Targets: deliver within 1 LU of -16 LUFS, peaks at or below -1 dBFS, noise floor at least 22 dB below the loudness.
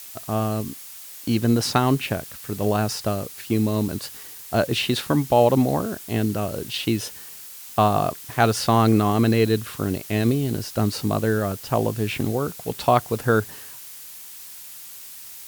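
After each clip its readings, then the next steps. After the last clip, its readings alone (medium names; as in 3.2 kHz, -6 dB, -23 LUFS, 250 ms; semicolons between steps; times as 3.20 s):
noise floor -40 dBFS; noise floor target -45 dBFS; loudness -22.5 LUFS; peak level -3.5 dBFS; loudness target -16.0 LUFS
-> noise print and reduce 6 dB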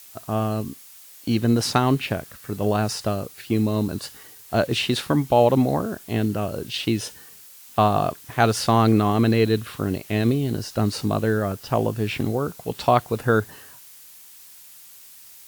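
noise floor -46 dBFS; loudness -22.5 LUFS; peak level -3.0 dBFS; loudness target -16.0 LUFS
-> trim +6.5 dB; peak limiter -1 dBFS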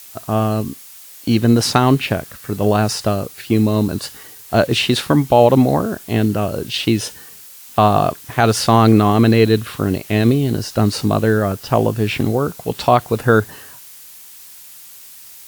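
loudness -16.5 LUFS; peak level -1.0 dBFS; noise floor -40 dBFS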